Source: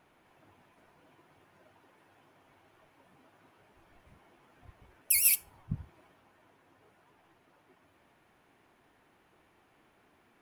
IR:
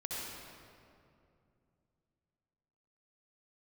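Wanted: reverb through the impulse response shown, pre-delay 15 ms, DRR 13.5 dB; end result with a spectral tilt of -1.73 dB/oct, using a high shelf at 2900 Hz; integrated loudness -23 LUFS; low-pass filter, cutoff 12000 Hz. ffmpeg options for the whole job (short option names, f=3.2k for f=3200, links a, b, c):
-filter_complex "[0:a]lowpass=12k,highshelf=f=2.9k:g=-6.5,asplit=2[a][b];[1:a]atrim=start_sample=2205,adelay=15[c];[b][c]afir=irnorm=-1:irlink=0,volume=-15.5dB[d];[a][d]amix=inputs=2:normalize=0,volume=12.5dB"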